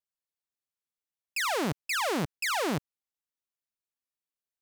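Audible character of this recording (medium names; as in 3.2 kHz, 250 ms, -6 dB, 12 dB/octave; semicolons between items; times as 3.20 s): noise floor -94 dBFS; spectral tilt -4.0 dB/octave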